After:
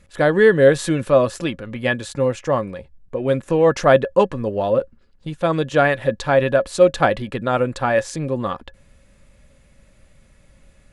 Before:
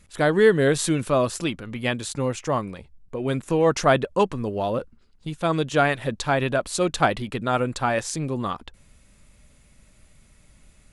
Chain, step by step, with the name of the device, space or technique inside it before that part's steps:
inside a helmet (high-shelf EQ 5,100 Hz −8.5 dB; hollow resonant body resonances 540/1,700 Hz, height 12 dB, ringing for 85 ms)
level +2.5 dB

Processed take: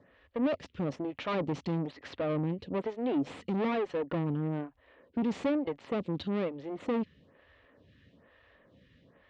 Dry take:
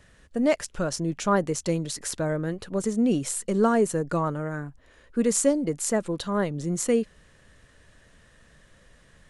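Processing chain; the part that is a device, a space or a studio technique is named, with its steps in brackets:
vibe pedal into a guitar amplifier (phaser with staggered stages 1.1 Hz; tube saturation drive 33 dB, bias 0.75; loudspeaker in its box 83–3,600 Hz, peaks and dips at 88 Hz +6 dB, 270 Hz +6 dB, 530 Hz +3 dB, 1,500 Hz −6 dB)
level +4 dB

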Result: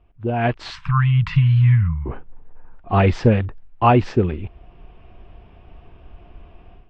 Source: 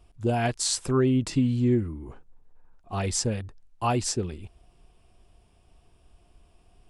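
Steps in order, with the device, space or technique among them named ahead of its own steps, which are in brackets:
0:00.70–0:02.06: Chebyshev band-stop filter 170–990 Hz, order 4
action camera in a waterproof case (low-pass filter 2,700 Hz 24 dB per octave; automatic gain control gain up to 15 dB; AAC 48 kbit/s 22,050 Hz)

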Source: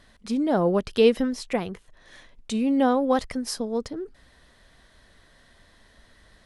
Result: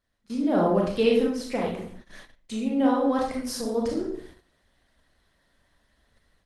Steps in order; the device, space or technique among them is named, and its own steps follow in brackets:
speakerphone in a meeting room (convolution reverb RT60 0.60 s, pre-delay 25 ms, DRR −2 dB; automatic gain control gain up to 11 dB; noise gate −35 dBFS, range −16 dB; level −8 dB; Opus 20 kbit/s 48,000 Hz)

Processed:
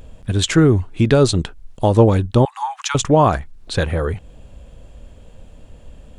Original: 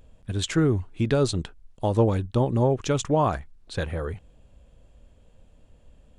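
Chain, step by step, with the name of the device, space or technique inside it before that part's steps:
0:02.45–0:02.95: Butterworth high-pass 800 Hz 96 dB per octave
parallel compression (in parallel at −2 dB: downward compressor, threshold −39 dBFS, peak gain reduction 21.5 dB)
on the sum: level +8 dB

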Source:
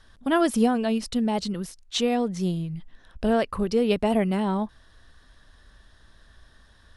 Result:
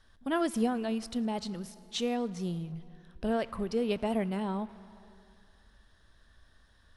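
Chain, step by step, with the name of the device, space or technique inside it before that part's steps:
saturated reverb return (on a send at −11 dB: convolution reverb RT60 2.1 s, pre-delay 12 ms + soft clipping −28 dBFS, distortion −7 dB)
on the sum: level −8 dB

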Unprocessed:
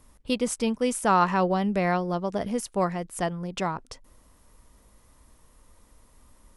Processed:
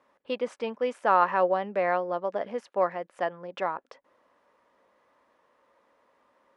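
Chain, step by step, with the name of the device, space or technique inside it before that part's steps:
tin-can telephone (band-pass filter 460–2,200 Hz; hollow resonant body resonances 550/1,700 Hz, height 6 dB)

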